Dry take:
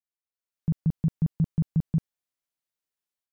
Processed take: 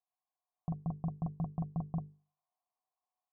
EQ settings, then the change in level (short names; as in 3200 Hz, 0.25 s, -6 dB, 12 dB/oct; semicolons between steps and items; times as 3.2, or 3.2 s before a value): vocal tract filter a; notches 50/100/150/200/250/300/350/400/450 Hz; notch 580 Hz, Q 15; +17.5 dB